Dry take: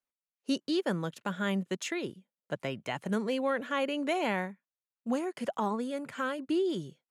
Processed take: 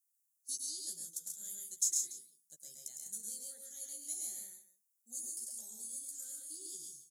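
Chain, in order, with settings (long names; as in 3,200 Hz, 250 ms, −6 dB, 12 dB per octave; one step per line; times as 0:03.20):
inverse Chebyshev high-pass filter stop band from 2,900 Hz, stop band 50 dB
double-tracking delay 13 ms −6 dB
multi-tap delay 107/135/170/287 ms −5/−4/−11.5/−17 dB
level +13.5 dB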